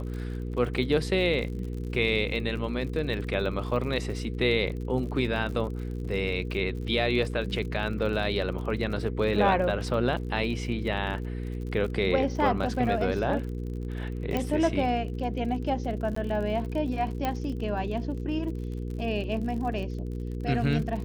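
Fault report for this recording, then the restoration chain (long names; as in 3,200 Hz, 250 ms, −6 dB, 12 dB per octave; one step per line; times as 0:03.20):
surface crackle 49 per second −36 dBFS
mains hum 60 Hz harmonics 8 −33 dBFS
0:14.37: click −15 dBFS
0:16.15–0:16.16: drop-out 14 ms
0:17.25: click −15 dBFS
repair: click removal
hum removal 60 Hz, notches 8
repair the gap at 0:16.15, 14 ms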